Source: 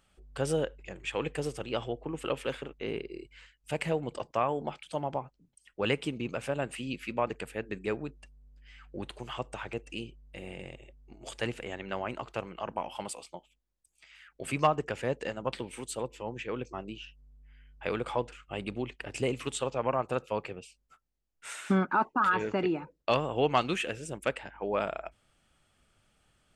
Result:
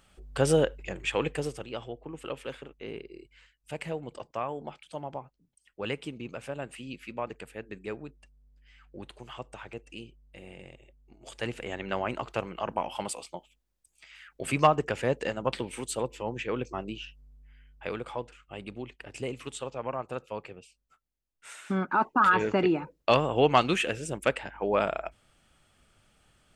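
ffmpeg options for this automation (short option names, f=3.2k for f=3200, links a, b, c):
-af "volume=24dB,afade=t=out:st=0.95:d=0.77:silence=0.281838,afade=t=in:st=11.24:d=0.6:silence=0.375837,afade=t=out:st=17.01:d=1.08:silence=0.375837,afade=t=in:st=21.71:d=0.5:silence=0.354813"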